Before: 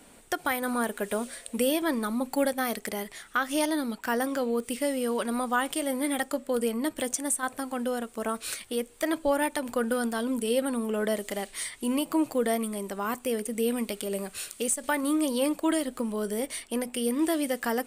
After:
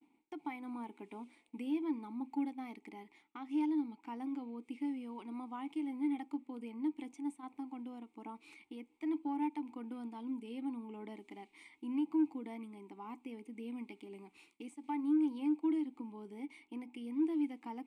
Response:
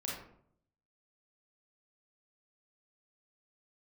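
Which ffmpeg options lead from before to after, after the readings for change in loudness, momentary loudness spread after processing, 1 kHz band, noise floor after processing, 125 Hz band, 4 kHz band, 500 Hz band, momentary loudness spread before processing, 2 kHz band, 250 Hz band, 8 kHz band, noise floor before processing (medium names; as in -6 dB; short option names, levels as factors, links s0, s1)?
-10.5 dB, 17 LU, -14.0 dB, -73 dBFS, no reading, under -20 dB, -20.5 dB, 6 LU, -22.5 dB, -7.0 dB, under -35 dB, -53 dBFS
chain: -filter_complex "[0:a]asplit=3[s0][s1][s2];[s0]bandpass=f=300:t=q:w=8,volume=1[s3];[s1]bandpass=f=870:t=q:w=8,volume=0.501[s4];[s2]bandpass=f=2240:t=q:w=8,volume=0.355[s5];[s3][s4][s5]amix=inputs=3:normalize=0,aeval=exprs='0.0944*(cos(1*acos(clip(val(0)/0.0944,-1,1)))-cos(1*PI/2))+0.00211*(cos(5*acos(clip(val(0)/0.0944,-1,1)))-cos(5*PI/2))':c=same,agate=range=0.0224:threshold=0.001:ratio=3:detection=peak,volume=0.708"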